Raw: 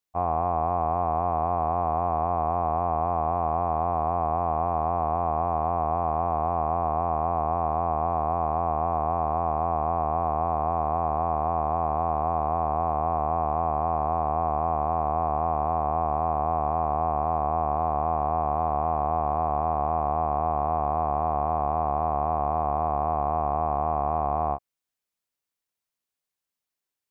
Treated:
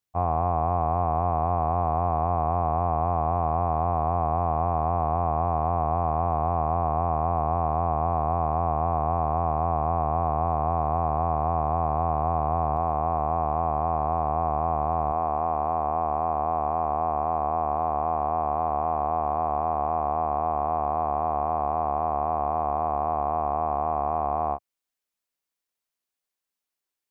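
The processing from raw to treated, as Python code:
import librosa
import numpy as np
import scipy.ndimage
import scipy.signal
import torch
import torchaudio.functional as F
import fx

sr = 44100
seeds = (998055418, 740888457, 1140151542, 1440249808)

y = fx.peak_eq(x, sr, hz=110.0, db=fx.steps((0.0, 11.5), (12.77, 4.5), (15.12, -11.5)), octaves=0.74)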